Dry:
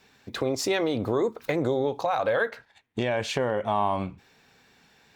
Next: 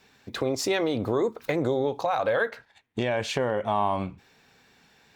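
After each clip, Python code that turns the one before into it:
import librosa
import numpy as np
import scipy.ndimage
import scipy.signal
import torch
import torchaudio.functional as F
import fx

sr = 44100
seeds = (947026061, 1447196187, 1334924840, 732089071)

y = x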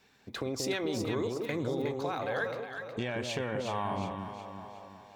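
y = fx.echo_alternate(x, sr, ms=182, hz=950.0, feedback_pct=66, wet_db=-3.0)
y = fx.dynamic_eq(y, sr, hz=660.0, q=1.0, threshold_db=-37.0, ratio=4.0, max_db=-6)
y = F.gain(torch.from_numpy(y), -5.5).numpy()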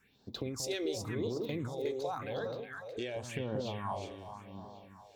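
y = fx.phaser_stages(x, sr, stages=4, low_hz=160.0, high_hz=2200.0, hz=0.91, feedback_pct=35)
y = F.gain(torch.from_numpy(y), -1.5).numpy()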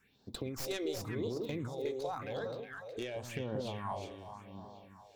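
y = fx.tracing_dist(x, sr, depth_ms=0.095)
y = F.gain(torch.from_numpy(y), -1.5).numpy()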